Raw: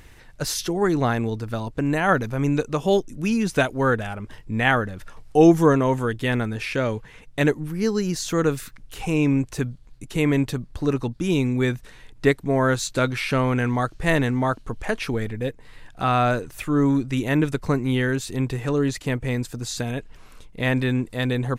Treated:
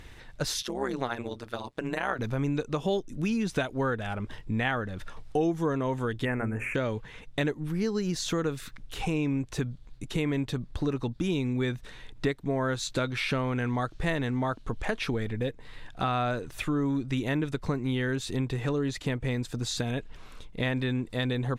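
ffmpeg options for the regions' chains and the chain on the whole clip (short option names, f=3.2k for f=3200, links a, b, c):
-filter_complex "[0:a]asettb=1/sr,asplit=3[a][b][c];[a]atrim=end=0.624[d];[b]atrim=start=0.62:end=2.19,asetpts=PTS-STARTPTS,afade=t=in:d=0.004:c=qsin,afade=t=out:st=1.566:d=0.004:c=qsin,highpass=f=480:p=1,equalizer=f=10k:t=o:w=0.3:g=3.5,tremolo=f=130:d=0.919[e];[c]atrim=start=2.186[f];[d][e]acrossfade=d=0.004:c1=hsin:c2=qsin[g];[g][f]acrossfade=d=0.004:c1=qsin:c2=hsin,asettb=1/sr,asplit=3[h][i][j];[h]atrim=end=6.254[k];[i]atrim=start=6.25:end=6.75,asetpts=PTS-STARTPTS,afade=t=in:d=0.004:c=qsin,afade=t=out:st=0.496:d=0.004:c=qsin,asuperstop=centerf=4200:order=8:qfactor=0.9,bandreject=f=60:t=h:w=6,bandreject=f=120:t=h:w=6,bandreject=f=180:t=h:w=6,bandreject=f=240:t=h:w=6,bandreject=f=300:t=h:w=6,bandreject=f=360:t=h:w=6,bandreject=f=420:t=h:w=6,bandreject=f=480:t=h:w=6,bandreject=f=540:t=h:w=6,bandreject=f=600:t=h:w=6[l];[j]atrim=start=6.746[m];[k][l]acrossfade=d=0.004:c1=hsin:c2=qsin[n];[n][m]acrossfade=d=0.004:c1=qsin:c2=hsin,equalizer=f=3.6k:w=4.5:g=5,acompressor=threshold=-26dB:ratio=4,highshelf=f=9.3k:g=-10.5"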